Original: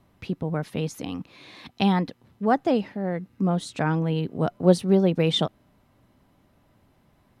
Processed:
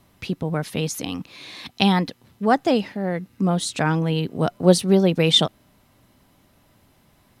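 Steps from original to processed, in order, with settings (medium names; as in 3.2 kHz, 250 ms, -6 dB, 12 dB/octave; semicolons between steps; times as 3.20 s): treble shelf 2.7 kHz +10.5 dB; trim +2.5 dB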